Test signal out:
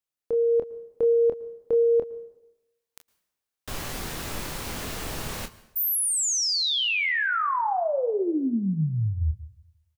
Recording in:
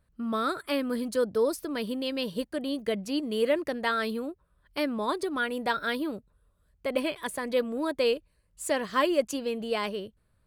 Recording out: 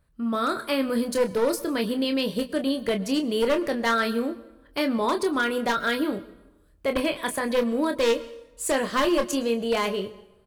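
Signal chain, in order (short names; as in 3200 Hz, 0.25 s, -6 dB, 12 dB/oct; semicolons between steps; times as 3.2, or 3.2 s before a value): one-sided fold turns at -22 dBFS; in parallel at +3 dB: limiter -23 dBFS; on the sum: AGC gain up to 3.5 dB; early reflections 26 ms -7.5 dB, 38 ms -16 dB; plate-style reverb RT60 0.95 s, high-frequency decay 0.8×, pre-delay 0.1 s, DRR 17.5 dB; gain -5.5 dB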